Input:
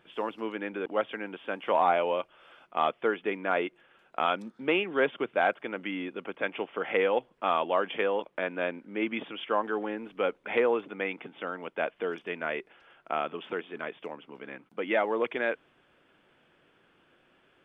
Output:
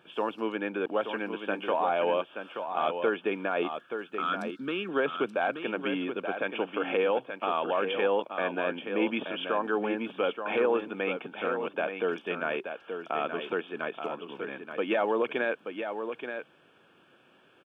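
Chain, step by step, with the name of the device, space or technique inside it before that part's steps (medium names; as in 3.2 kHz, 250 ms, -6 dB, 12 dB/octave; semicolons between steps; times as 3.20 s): PA system with an anti-feedback notch (high-pass 110 Hz; Butterworth band-stop 2 kHz, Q 5.9; peak limiter -20.5 dBFS, peak gain reduction 8.5 dB); 3.63–4.89 s: FFT filter 280 Hz 0 dB, 790 Hz -16 dB, 1.3 kHz +4 dB, 2.5 kHz -7 dB, 3.9 kHz +4 dB; delay 878 ms -7.5 dB; trim +3 dB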